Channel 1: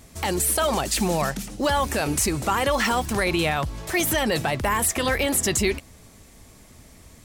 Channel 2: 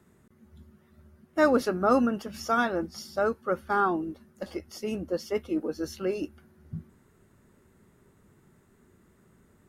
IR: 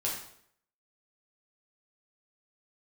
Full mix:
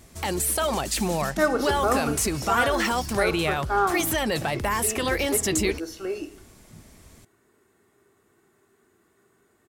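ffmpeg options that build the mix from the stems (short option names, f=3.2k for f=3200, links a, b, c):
-filter_complex "[0:a]volume=-2.5dB[a];[1:a]highpass=f=400:p=1,aecho=1:1:2.7:0.45,volume=-1.5dB,asplit=2[b][c];[c]volume=-10.5dB[d];[2:a]atrim=start_sample=2205[e];[d][e]afir=irnorm=-1:irlink=0[f];[a][b][f]amix=inputs=3:normalize=0"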